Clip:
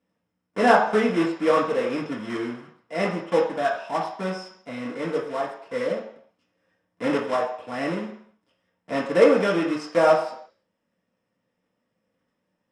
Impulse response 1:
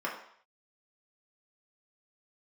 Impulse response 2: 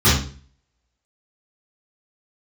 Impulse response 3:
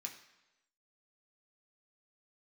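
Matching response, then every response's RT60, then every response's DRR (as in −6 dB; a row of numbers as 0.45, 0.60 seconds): 1; 0.60, 0.45, 1.0 seconds; −4.0, −14.5, 0.5 decibels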